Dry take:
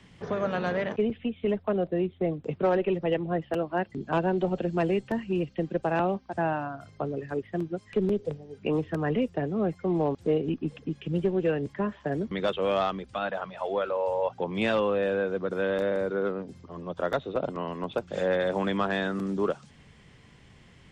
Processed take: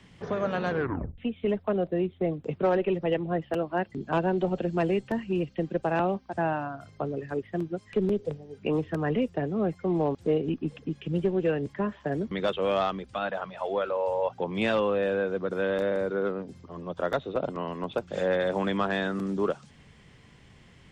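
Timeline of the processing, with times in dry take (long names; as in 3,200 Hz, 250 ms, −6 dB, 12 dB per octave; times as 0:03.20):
0:00.70: tape stop 0.48 s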